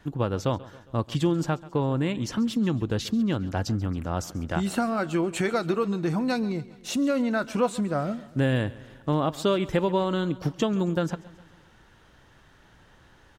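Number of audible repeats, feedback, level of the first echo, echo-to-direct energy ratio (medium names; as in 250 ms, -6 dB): 3, 54%, -19.5 dB, -18.0 dB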